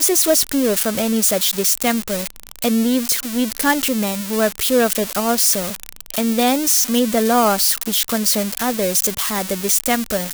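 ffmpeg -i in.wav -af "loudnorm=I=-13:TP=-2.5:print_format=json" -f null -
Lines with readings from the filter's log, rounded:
"input_i" : "-17.1",
"input_tp" : "-4.0",
"input_lra" : "1.6",
"input_thresh" : "-27.2",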